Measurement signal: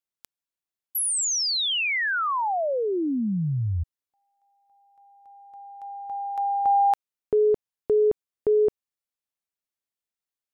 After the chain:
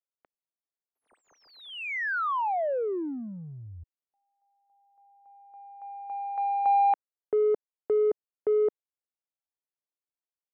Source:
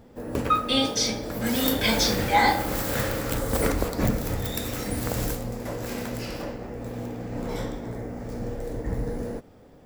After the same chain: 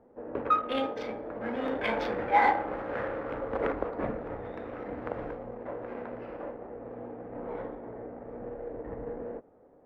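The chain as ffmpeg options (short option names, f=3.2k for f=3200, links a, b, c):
-filter_complex "[0:a]adynamicsmooth=sensitivity=1.5:basefreq=1.1k,acrossover=split=320 2600:gain=0.158 1 0.0631[a][b][c];[a][b][c]amix=inputs=3:normalize=0,volume=-1.5dB"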